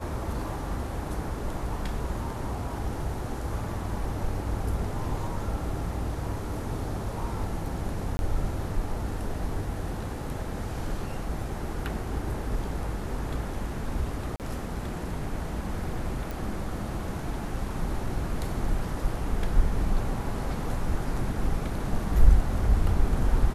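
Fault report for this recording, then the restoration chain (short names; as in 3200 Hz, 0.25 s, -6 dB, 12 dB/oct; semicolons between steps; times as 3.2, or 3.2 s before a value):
8.17–8.19 gap 21 ms
14.36–14.4 gap 38 ms
16.31 pop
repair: de-click; interpolate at 8.17, 21 ms; interpolate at 14.36, 38 ms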